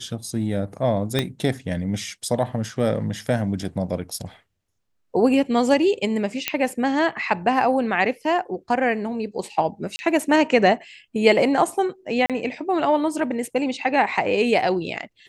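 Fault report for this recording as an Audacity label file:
1.190000	1.190000	pop -7 dBFS
6.480000	6.480000	pop -4 dBFS
9.960000	9.990000	dropout 30 ms
12.260000	12.300000	dropout 37 ms

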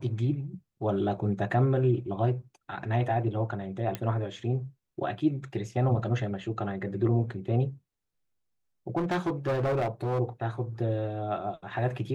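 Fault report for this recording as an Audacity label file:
3.950000	3.950000	pop -17 dBFS
8.960000	10.200000	clipped -24 dBFS

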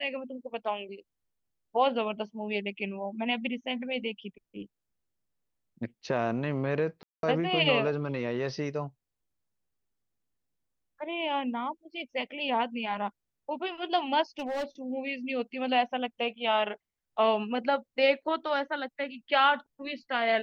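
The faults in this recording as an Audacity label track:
7.030000	7.230000	dropout 202 ms
14.390000	14.640000	clipped -29 dBFS

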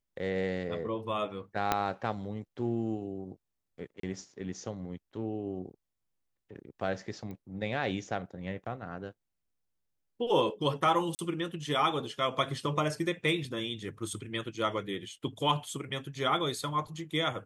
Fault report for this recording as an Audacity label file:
1.720000	1.720000	pop -11 dBFS
4.000000	4.030000	dropout 33 ms
7.310000	7.310000	pop -31 dBFS
11.150000	11.190000	dropout 39 ms

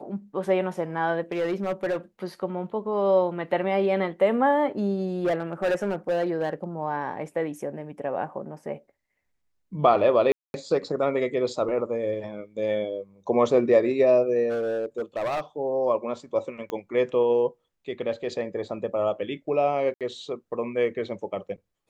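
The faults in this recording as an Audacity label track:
1.320000	1.970000	clipped -21.5 dBFS
5.240000	6.640000	clipped -20 dBFS
10.320000	10.540000	dropout 221 ms
14.490000	15.410000	clipped -24 dBFS
16.700000	16.700000	pop -19 dBFS
19.940000	20.010000	dropout 67 ms

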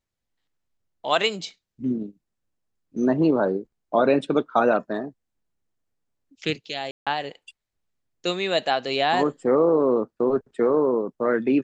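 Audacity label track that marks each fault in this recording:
6.910000	7.070000	dropout 156 ms

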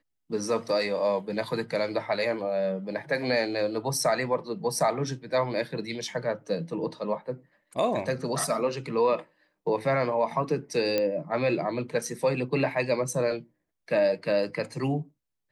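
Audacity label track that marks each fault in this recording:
10.980000	10.980000	pop -13 dBFS

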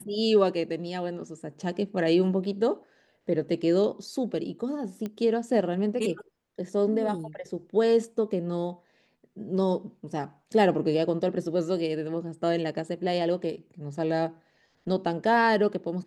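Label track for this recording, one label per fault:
5.060000	5.060000	pop -21 dBFS

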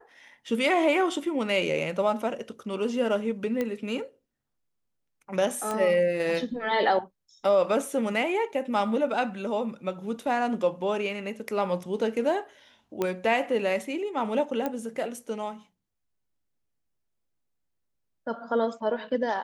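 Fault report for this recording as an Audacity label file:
3.610000	3.610000	pop -16 dBFS
5.710000	5.710000	pop -17 dBFS
13.020000	13.020000	pop -14 dBFS
14.660000	14.660000	pop -16 dBFS

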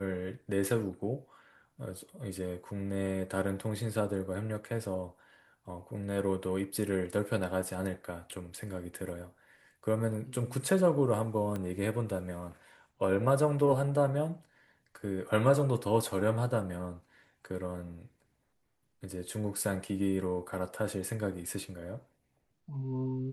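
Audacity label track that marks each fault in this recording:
11.560000	11.560000	pop -24 dBFS

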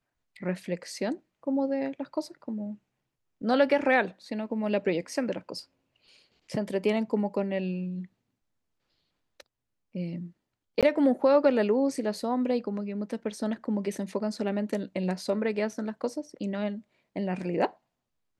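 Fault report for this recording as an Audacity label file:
10.810000	10.830000	dropout 17 ms

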